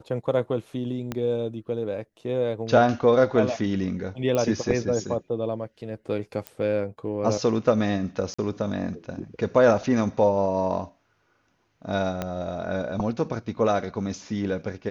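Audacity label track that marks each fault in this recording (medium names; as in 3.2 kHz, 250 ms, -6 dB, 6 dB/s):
1.120000	1.120000	pop -15 dBFS
4.350000	4.350000	pop -13 dBFS
6.470000	6.470000	pop -17 dBFS
8.340000	8.380000	dropout 45 ms
12.220000	12.220000	pop -14 dBFS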